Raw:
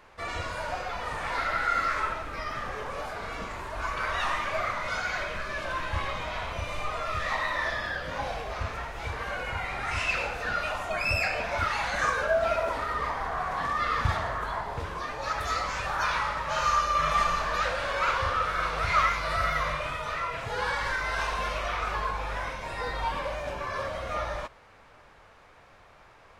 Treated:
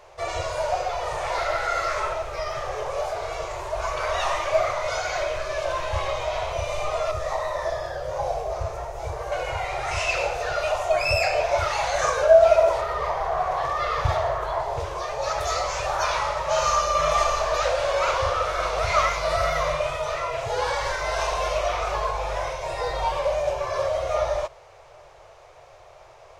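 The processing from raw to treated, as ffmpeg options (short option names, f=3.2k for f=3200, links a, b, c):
-filter_complex "[0:a]asettb=1/sr,asplit=3[a][b][c];[a]atrim=end=7.114[d];[b]atrim=start=7.11:end=9.32,asetpts=PTS-STARTPTS,afade=t=in:d=0.004:c=qsin,afade=t=out:st=2.206:d=0.004:c=qsin,equalizer=f=2.9k:w=0.66:g=-10.5[e];[c]atrim=start=9.316[f];[d][e]acrossfade=d=0.004:c1=hsin:c2=qsin[g];[g][f]acrossfade=d=0.004:c1=qsin:c2=hsin,asettb=1/sr,asplit=3[h][i][j];[h]atrim=end=12.814[k];[i]atrim=start=12.81:end=14.6,asetpts=PTS-STARTPTS,afade=t=in:d=0.004:c=qsin,afade=t=out:st=1.786:d=0.004:c=qsin,equalizer=f=7.7k:t=o:w=1.3:g=-6[l];[j]atrim=start=14.596[m];[k][l]acrossfade=d=0.004:c1=hsin:c2=qsin[n];[n][m]acrossfade=d=0.004:c1=qsin:c2=hsin,afftfilt=real='re*(1-between(b*sr/4096,160,330))':imag='im*(1-between(b*sr/4096,160,330))':win_size=4096:overlap=0.75,equalizer=f=630:t=o:w=0.67:g=10,equalizer=f=1.6k:t=o:w=0.67:g=-6,equalizer=f=6.3k:t=o:w=0.67:g=7,volume=3dB"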